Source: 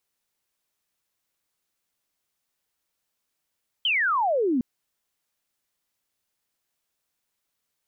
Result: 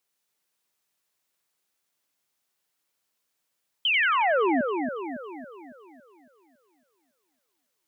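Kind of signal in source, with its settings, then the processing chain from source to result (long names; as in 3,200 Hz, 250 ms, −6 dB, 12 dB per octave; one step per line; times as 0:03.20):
single falling chirp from 3,200 Hz, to 230 Hz, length 0.76 s sine, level −20 dB
high-pass filter 160 Hz 6 dB per octave
echo with a time of its own for lows and highs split 2,300 Hz, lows 278 ms, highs 90 ms, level −5 dB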